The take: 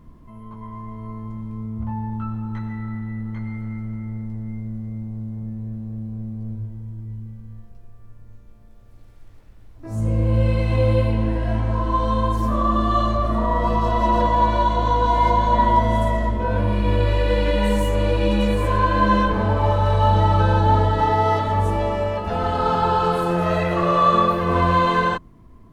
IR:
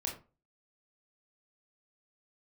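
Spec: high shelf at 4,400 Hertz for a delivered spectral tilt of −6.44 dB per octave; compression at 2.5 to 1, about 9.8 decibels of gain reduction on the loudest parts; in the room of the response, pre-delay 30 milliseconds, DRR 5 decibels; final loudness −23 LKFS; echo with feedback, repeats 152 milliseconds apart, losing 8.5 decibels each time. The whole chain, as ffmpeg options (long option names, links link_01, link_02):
-filter_complex "[0:a]highshelf=frequency=4400:gain=-8,acompressor=threshold=-28dB:ratio=2.5,aecho=1:1:152|304|456|608:0.376|0.143|0.0543|0.0206,asplit=2[link_01][link_02];[1:a]atrim=start_sample=2205,adelay=30[link_03];[link_02][link_03]afir=irnorm=-1:irlink=0,volume=-6.5dB[link_04];[link_01][link_04]amix=inputs=2:normalize=0,volume=5.5dB"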